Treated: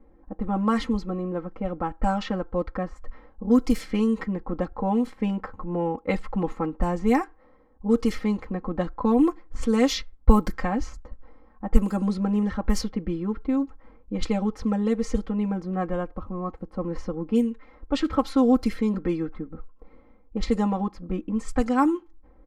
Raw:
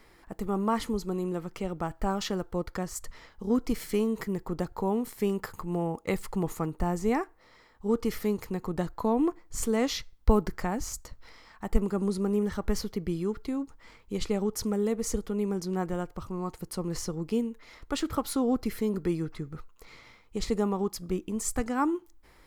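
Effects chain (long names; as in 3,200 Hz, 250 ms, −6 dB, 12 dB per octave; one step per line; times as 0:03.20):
comb filter 3.8 ms, depth 99%
low-pass that shuts in the quiet parts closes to 500 Hz, open at −18 dBFS
level +2 dB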